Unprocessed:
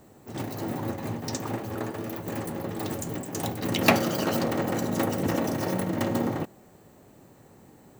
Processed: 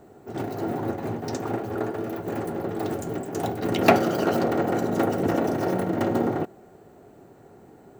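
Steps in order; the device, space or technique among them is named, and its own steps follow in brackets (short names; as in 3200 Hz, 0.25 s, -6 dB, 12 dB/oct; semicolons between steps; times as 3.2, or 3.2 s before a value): inside a helmet (high shelf 3600 Hz -7 dB; small resonant body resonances 400/700/1400 Hz, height 9 dB, ringing for 25 ms)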